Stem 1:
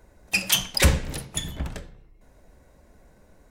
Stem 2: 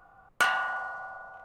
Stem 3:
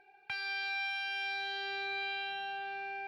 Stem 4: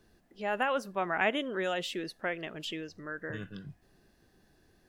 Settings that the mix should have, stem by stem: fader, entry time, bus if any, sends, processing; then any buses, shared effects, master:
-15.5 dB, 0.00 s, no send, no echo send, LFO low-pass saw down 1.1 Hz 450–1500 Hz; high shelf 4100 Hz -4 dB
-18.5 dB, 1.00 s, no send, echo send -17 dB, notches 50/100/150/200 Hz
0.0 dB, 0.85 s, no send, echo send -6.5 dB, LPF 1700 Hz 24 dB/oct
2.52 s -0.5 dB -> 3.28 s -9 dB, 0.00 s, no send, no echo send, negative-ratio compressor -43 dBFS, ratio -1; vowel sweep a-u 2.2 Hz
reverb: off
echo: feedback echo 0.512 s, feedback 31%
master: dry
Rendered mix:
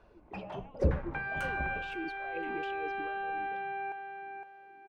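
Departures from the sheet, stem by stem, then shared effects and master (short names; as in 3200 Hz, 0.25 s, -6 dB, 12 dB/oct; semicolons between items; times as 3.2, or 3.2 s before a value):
stem 1 -15.5 dB -> -9.0 dB; stem 3 0.0 dB -> +6.0 dB; stem 4 -0.5 dB -> +8.5 dB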